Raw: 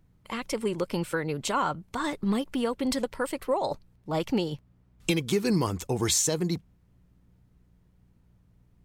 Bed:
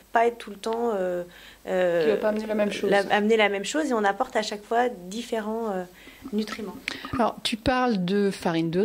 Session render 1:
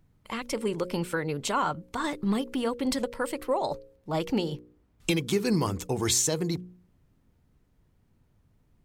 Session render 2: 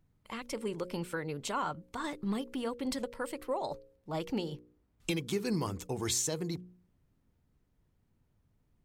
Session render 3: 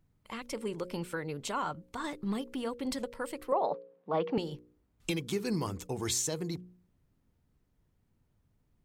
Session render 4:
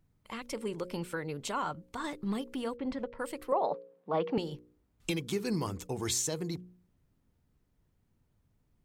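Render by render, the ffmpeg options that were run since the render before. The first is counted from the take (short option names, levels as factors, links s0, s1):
-af "bandreject=f=60:t=h:w=4,bandreject=f=120:t=h:w=4,bandreject=f=180:t=h:w=4,bandreject=f=240:t=h:w=4,bandreject=f=300:t=h:w=4,bandreject=f=360:t=h:w=4,bandreject=f=420:t=h:w=4,bandreject=f=480:t=h:w=4,bandreject=f=540:t=h:w=4"
-af "volume=0.447"
-filter_complex "[0:a]asettb=1/sr,asplit=3[s0][s1][s2];[s0]atrim=end=3.524[s3];[s1]atrim=start=3.52:end=4.38,asetpts=PTS-STARTPTS,afade=t=in:d=0.004:c=qsin,afade=t=out:st=0.856:d=0.004:c=qsin,highpass=f=180:w=0.5412,highpass=f=180:w=1.3066,equalizer=f=180:t=q:w=4:g=8,equalizer=f=470:t=q:w=4:g=10,equalizer=f=720:t=q:w=4:g=7,equalizer=f=1100:t=q:w=4:g=9,equalizer=f=1600:t=q:w=4:g=3,lowpass=f=3500:w=0.5412,lowpass=f=3500:w=1.3066[s4];[s2]atrim=start=4.376[s5];[s3][s4]acrossfade=d=0.004:c1=hsin:c2=qsin[s6];[s6][s5]acrossfade=d=0.004:c1=qsin:c2=hsin"
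-filter_complex "[0:a]asplit=3[s0][s1][s2];[s0]afade=t=out:st=2.76:d=0.02[s3];[s1]lowpass=2200,afade=t=in:st=2.76:d=0.02,afade=t=out:st=3.18:d=0.02[s4];[s2]afade=t=in:st=3.18:d=0.02[s5];[s3][s4][s5]amix=inputs=3:normalize=0"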